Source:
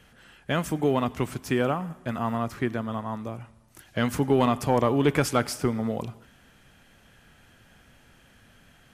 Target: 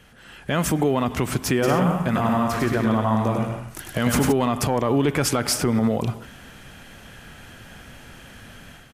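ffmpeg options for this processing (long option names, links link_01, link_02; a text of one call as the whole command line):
ffmpeg -i in.wav -filter_complex "[0:a]acompressor=threshold=-25dB:ratio=6,alimiter=level_in=0.5dB:limit=-24dB:level=0:latency=1:release=53,volume=-0.5dB,dynaudnorm=framelen=230:gausssize=3:maxgain=9dB,asplit=3[link_01][link_02][link_03];[link_01]afade=type=out:start_time=1.62:duration=0.02[link_04];[link_02]aecho=1:1:100|175|231.2|273.4|305.1:0.631|0.398|0.251|0.158|0.1,afade=type=in:start_time=1.62:duration=0.02,afade=type=out:start_time=4.31:duration=0.02[link_05];[link_03]afade=type=in:start_time=4.31:duration=0.02[link_06];[link_04][link_05][link_06]amix=inputs=3:normalize=0,volume=4dB" out.wav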